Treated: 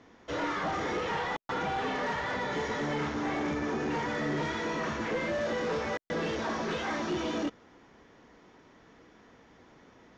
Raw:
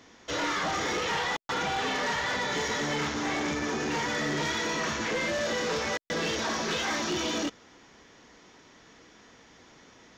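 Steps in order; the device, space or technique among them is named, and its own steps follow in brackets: through cloth (low-pass 9.4 kHz 12 dB/octave; treble shelf 2.8 kHz -15 dB)

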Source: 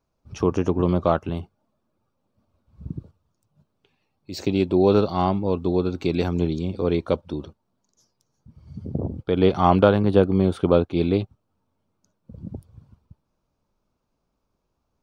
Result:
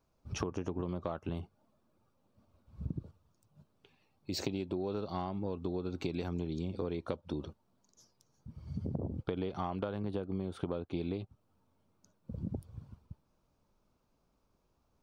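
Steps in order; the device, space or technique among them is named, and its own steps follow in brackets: serial compression, leveller first (compression 3:1, threshold -21 dBFS, peak gain reduction 9 dB; compression 6:1, threshold -33 dBFS, peak gain reduction 15 dB)

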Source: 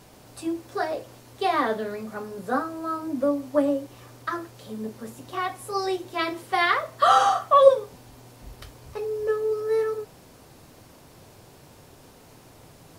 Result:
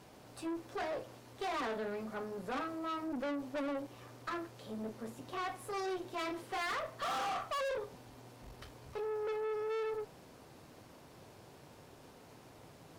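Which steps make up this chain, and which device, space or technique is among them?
tube preamp driven hard (valve stage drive 32 dB, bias 0.5; bass shelf 92 Hz -8 dB; treble shelf 5.5 kHz -8 dB); trim -2.5 dB

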